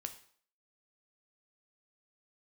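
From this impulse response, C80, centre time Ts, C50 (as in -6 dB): 16.0 dB, 8 ms, 12.0 dB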